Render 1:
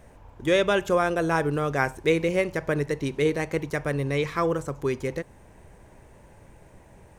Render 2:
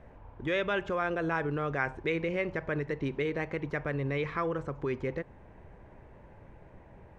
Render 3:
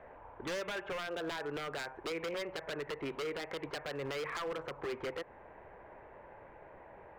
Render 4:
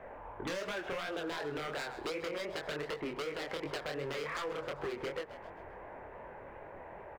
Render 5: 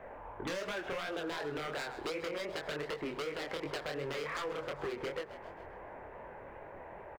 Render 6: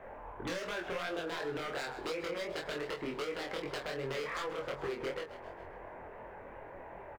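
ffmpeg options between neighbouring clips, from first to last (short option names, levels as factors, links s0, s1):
-filter_complex "[0:a]lowpass=2300,acrossover=split=1400[s0][s1];[s0]alimiter=limit=0.0668:level=0:latency=1:release=97[s2];[s2][s1]amix=inputs=2:normalize=0,volume=0.841"
-filter_complex "[0:a]acrossover=split=400 2800:gain=0.141 1 0.0631[s0][s1][s2];[s0][s1][s2]amix=inputs=3:normalize=0,acompressor=threshold=0.0126:ratio=5,aeval=exprs='0.0126*(abs(mod(val(0)/0.0126+3,4)-2)-1)':c=same,volume=1.88"
-filter_complex "[0:a]asplit=5[s0][s1][s2][s3][s4];[s1]adelay=131,afreqshift=77,volume=0.141[s5];[s2]adelay=262,afreqshift=154,volume=0.0638[s6];[s3]adelay=393,afreqshift=231,volume=0.0285[s7];[s4]adelay=524,afreqshift=308,volume=0.0129[s8];[s0][s5][s6][s7][s8]amix=inputs=5:normalize=0,flanger=delay=20:depth=7.9:speed=2.7,acompressor=threshold=0.00708:ratio=6,volume=2.51"
-af "aecho=1:1:424:0.075"
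-filter_complex "[0:a]asplit=2[s0][s1];[s1]adelay=23,volume=0.596[s2];[s0][s2]amix=inputs=2:normalize=0,volume=0.891"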